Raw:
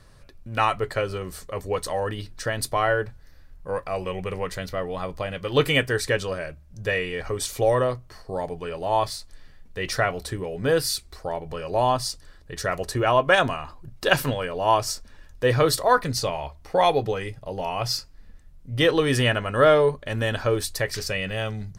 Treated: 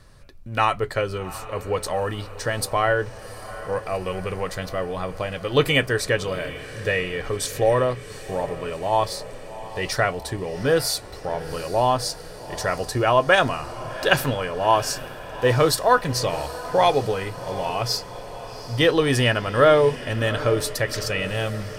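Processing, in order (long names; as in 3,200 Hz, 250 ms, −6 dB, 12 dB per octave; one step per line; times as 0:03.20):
feedback delay with all-pass diffusion 761 ms, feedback 64%, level −15 dB
level +1.5 dB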